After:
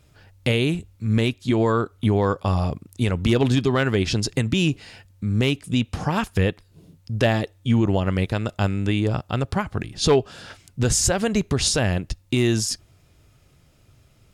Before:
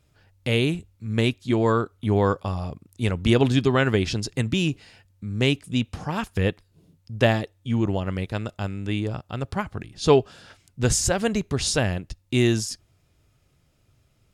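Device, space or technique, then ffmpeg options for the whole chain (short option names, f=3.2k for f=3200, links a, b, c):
clipper into limiter: -af "asoftclip=type=hard:threshold=-9dB,alimiter=limit=-17dB:level=0:latency=1:release=242,volume=7.5dB"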